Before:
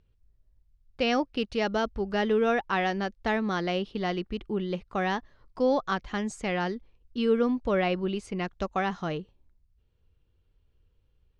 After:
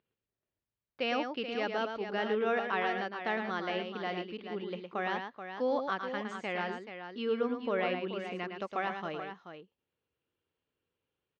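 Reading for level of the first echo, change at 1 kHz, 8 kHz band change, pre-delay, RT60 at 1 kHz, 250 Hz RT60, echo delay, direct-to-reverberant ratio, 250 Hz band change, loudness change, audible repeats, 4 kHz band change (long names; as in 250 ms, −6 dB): −6.5 dB, −4.0 dB, below −10 dB, no reverb audible, no reverb audible, no reverb audible, 111 ms, no reverb audible, −9.0 dB, −6.0 dB, 2, −5.0 dB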